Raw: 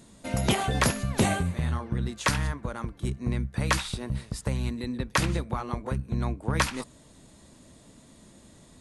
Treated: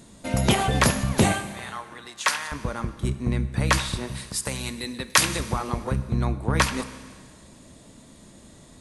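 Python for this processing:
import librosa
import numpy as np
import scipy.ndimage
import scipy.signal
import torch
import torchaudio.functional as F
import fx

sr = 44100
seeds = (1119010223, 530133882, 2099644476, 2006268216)

y = fx.highpass(x, sr, hz=770.0, slope=12, at=(1.32, 2.52))
y = fx.tilt_eq(y, sr, slope=3.0, at=(4.07, 5.4))
y = fx.rev_schroeder(y, sr, rt60_s=1.7, comb_ms=27, drr_db=12.5)
y = y * 10.0 ** (4.0 / 20.0)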